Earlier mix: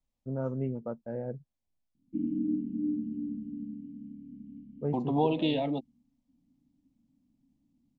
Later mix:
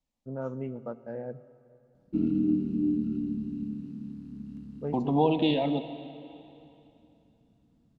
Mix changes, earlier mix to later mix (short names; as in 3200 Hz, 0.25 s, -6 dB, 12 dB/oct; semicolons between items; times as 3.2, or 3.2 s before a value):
first voice: add tilt +2 dB/oct; background: remove vocal tract filter i; reverb: on, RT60 2.9 s